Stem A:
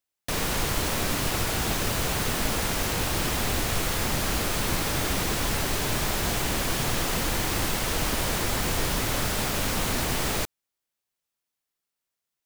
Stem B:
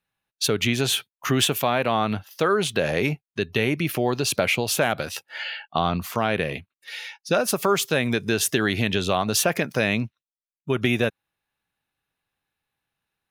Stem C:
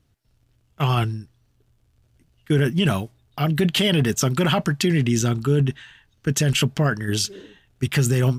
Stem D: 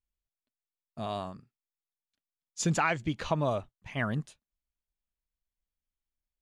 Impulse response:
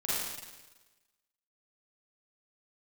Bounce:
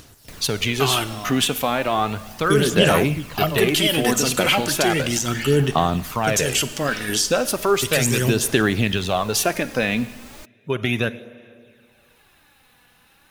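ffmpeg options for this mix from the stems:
-filter_complex "[0:a]volume=-17dB[a];[1:a]volume=-0.5dB,asplit=2[b][c];[c]volume=-21dB[d];[2:a]bass=f=250:g=-10,treble=f=4k:g=10,alimiter=limit=-12.5dB:level=0:latency=1:release=87,volume=1.5dB,asplit=2[e][f];[f]volume=-19dB[g];[3:a]adelay=100,volume=-1.5dB[h];[4:a]atrim=start_sample=2205[i];[d][g]amix=inputs=2:normalize=0[j];[j][i]afir=irnorm=-1:irlink=0[k];[a][b][e][h][k]amix=inputs=5:normalize=0,acompressor=mode=upward:threshold=-36dB:ratio=2.5,aphaser=in_gain=1:out_gain=1:delay=4.1:decay=0.4:speed=0.35:type=sinusoidal"

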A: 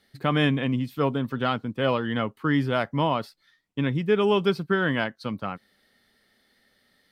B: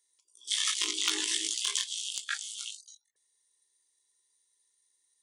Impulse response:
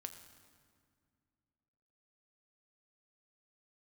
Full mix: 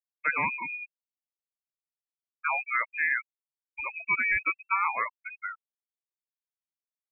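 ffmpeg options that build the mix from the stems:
-filter_complex "[0:a]highpass=f=1k:p=1,volume=2.5dB,asplit=3[a][b][c];[a]atrim=end=0.94,asetpts=PTS-STARTPTS,afade=t=out:st=0.936:d=0.004:c=hsin[d];[b]atrim=start=0.94:end=2.29,asetpts=PTS-STARTPTS,volume=0[e];[c]atrim=start=2.29,asetpts=PTS-STARTPTS,afade=t=in:d=0.004:c=hsin[f];[d][e][f]concat=n=3:v=0:a=1[g];[1:a]equalizer=f=1.8k:t=o:w=0.52:g=-10.5,aecho=1:1:6.4:0.45,volume=-8.5dB[h];[g][h]amix=inputs=2:normalize=0,afftfilt=real='re*gte(hypot(re,im),0.0891)':imag='im*gte(hypot(re,im),0.0891)':win_size=1024:overlap=0.75,lowpass=f=2.3k:t=q:w=0.5098,lowpass=f=2.3k:t=q:w=0.6013,lowpass=f=2.3k:t=q:w=0.9,lowpass=f=2.3k:t=q:w=2.563,afreqshift=-2700"

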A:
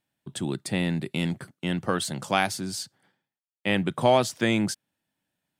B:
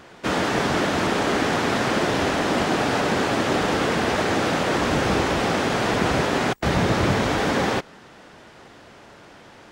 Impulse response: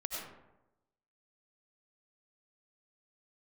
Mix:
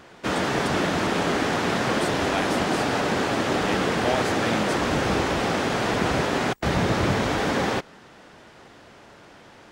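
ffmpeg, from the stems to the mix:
-filter_complex "[0:a]volume=-7dB[a];[1:a]volume=-2dB[b];[a][b]amix=inputs=2:normalize=0"

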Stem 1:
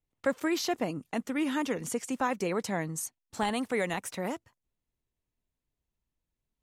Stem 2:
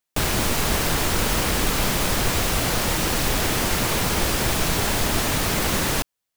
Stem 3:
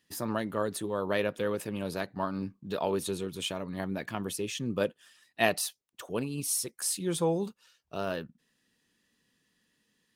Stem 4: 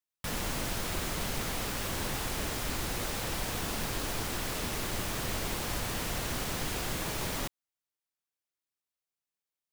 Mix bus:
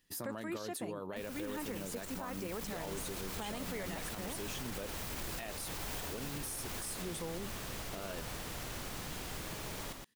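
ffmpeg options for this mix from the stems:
-filter_complex "[0:a]volume=2.5dB[a];[1:a]asoftclip=type=tanh:threshold=-19.5dB,adelay=1000,volume=-18.5dB[b];[2:a]volume=-3dB,asplit=2[c][d];[3:a]adelay=2450,volume=-9.5dB,asplit=2[e][f];[f]volume=-5dB[g];[d]apad=whole_len=292326[h];[a][h]sidechaincompress=threshold=-39dB:ratio=8:attack=5.2:release=1110[i];[b][c]amix=inputs=2:normalize=0,highshelf=f=11k:g=8.5,acompressor=threshold=-38dB:ratio=3,volume=0dB[j];[g]aecho=0:1:119:1[k];[i][e][j][k]amix=inputs=4:normalize=0,alimiter=level_in=7dB:limit=-24dB:level=0:latency=1:release=46,volume=-7dB"

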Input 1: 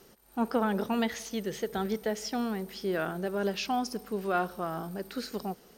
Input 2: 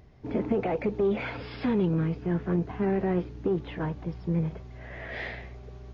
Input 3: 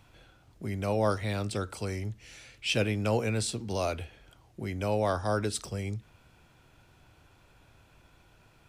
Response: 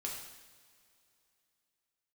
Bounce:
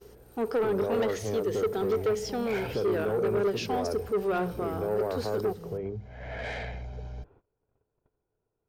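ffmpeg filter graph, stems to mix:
-filter_complex "[0:a]highpass=170,aeval=exprs='val(0)+0.00141*(sin(2*PI*60*n/s)+sin(2*PI*2*60*n/s)/2+sin(2*PI*3*60*n/s)/3+sin(2*PI*4*60*n/s)/4+sin(2*PI*5*60*n/s)/5)':c=same,volume=-1dB[a];[1:a]acompressor=threshold=-30dB:ratio=6,aecho=1:1:1.3:0.94,asoftclip=type=tanh:threshold=-31.5dB,adelay=1300,volume=-6dB[b];[2:a]lowpass=1k,bandreject=f=50:t=h:w=6,bandreject=f=100:t=h:w=6,bandreject=f=150:t=h:w=6,bandreject=f=200:t=h:w=6,volume=-8dB,asplit=2[c][d];[d]apad=whole_len=319294[e];[b][e]sidechaincompress=threshold=-53dB:ratio=8:attack=22:release=406[f];[f][c]amix=inputs=2:normalize=0,acontrast=87,alimiter=limit=-24dB:level=0:latency=1,volume=0dB[g];[a][g]amix=inputs=2:normalize=0,agate=range=-22dB:threshold=-57dB:ratio=16:detection=peak,equalizer=f=430:t=o:w=0.4:g=14.5,asoftclip=type=tanh:threshold=-21.5dB"

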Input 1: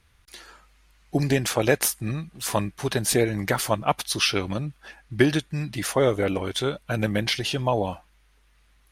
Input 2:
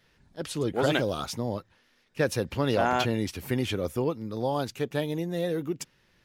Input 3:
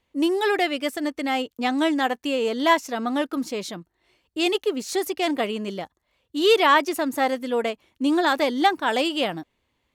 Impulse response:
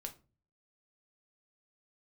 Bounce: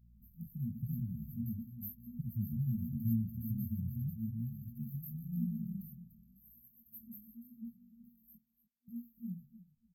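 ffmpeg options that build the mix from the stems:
-filter_complex "[0:a]highpass=f=350:w=0.5412,highpass=f=350:w=1.3066,volume=-9.5dB[a];[1:a]aeval=exprs='val(0)+0.001*(sin(2*PI*60*n/s)+sin(2*PI*2*60*n/s)/2+sin(2*PI*3*60*n/s)/3+sin(2*PI*4*60*n/s)/4+sin(2*PI*5*60*n/s)/5)':c=same,volume=-0.5dB,asplit=2[b][c];[c]volume=-9.5dB[d];[2:a]flanger=delay=18.5:depth=3.7:speed=0.81,volume=-2.5dB,asplit=3[e][f][g];[e]atrim=end=8.36,asetpts=PTS-STARTPTS,afade=t=out:st=8.356:d=0.004:c=hsin[h];[f]atrim=start=8.36:end=8.88,asetpts=PTS-STARTPTS,volume=0[i];[g]atrim=start=8.88,asetpts=PTS-STARTPTS,afade=t=in:d=0.004:c=hsin[j];[h][i][j]concat=n=3:v=0:a=1,asplit=3[k][l][m];[l]volume=-4dB[n];[m]volume=-12.5dB[o];[3:a]atrim=start_sample=2205[p];[n][p]afir=irnorm=-1:irlink=0[q];[d][o]amix=inputs=2:normalize=0,aecho=0:1:295|590|885:1|0.18|0.0324[r];[a][b][k][q][r]amix=inputs=5:normalize=0,afftfilt=real='re*(1-between(b*sr/4096,240,12000))':imag='im*(1-between(b*sr/4096,240,12000))':win_size=4096:overlap=0.75,flanger=delay=16.5:depth=6.6:speed=0.89"

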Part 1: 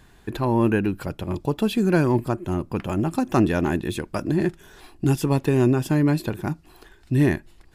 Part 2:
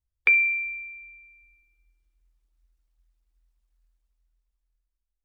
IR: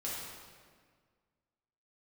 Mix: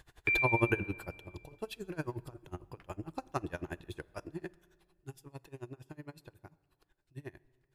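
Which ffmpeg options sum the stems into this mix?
-filter_complex "[0:a]aeval=exprs='val(0)*pow(10,-28*(0.5-0.5*cos(2*PI*11*n/s))/20)':c=same,volume=-1dB,afade=t=out:st=0.8:d=0.37:silence=0.354813,afade=t=out:st=4.24:d=0.54:silence=0.354813,asplit=2[a][b];[b]volume=-22.5dB[c];[1:a]bass=f=250:g=12,treble=f=4k:g=6,volume=-14.5dB,asplit=2[d][e];[e]volume=-7.5dB[f];[2:a]atrim=start_sample=2205[g];[c][f]amix=inputs=2:normalize=0[h];[h][g]afir=irnorm=-1:irlink=0[i];[a][d][i]amix=inputs=3:normalize=0,equalizer=f=220:t=o:w=0.64:g=-14"

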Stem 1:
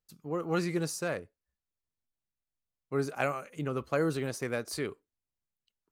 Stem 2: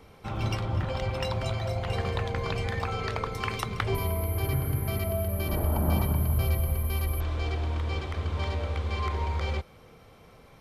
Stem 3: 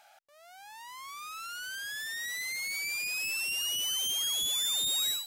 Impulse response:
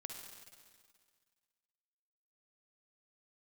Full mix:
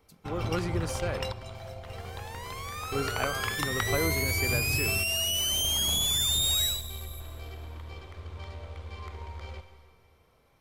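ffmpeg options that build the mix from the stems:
-filter_complex "[0:a]volume=-2dB,asplit=2[a][b];[1:a]equalizer=f=190:t=o:w=1.1:g=-3.5,aeval=exprs='0.266*(cos(1*acos(clip(val(0)/0.266,-1,1)))-cos(1*PI/2))+0.0473*(cos(2*acos(clip(val(0)/0.266,-1,1)))-cos(2*PI/2))+0.0335*(cos(3*acos(clip(val(0)/0.266,-1,1)))-cos(3*PI/2))':c=same,highshelf=f=10k:g=7,volume=-0.5dB,asplit=2[c][d];[d]volume=-8.5dB[e];[2:a]adelay=1550,volume=0.5dB,asplit=2[f][g];[g]volume=-3.5dB[h];[b]apad=whole_len=467711[i];[c][i]sidechaingate=range=-13dB:threshold=-52dB:ratio=16:detection=peak[j];[3:a]atrim=start_sample=2205[k];[e][h]amix=inputs=2:normalize=0[l];[l][k]afir=irnorm=-1:irlink=0[m];[a][j][f][m]amix=inputs=4:normalize=0"

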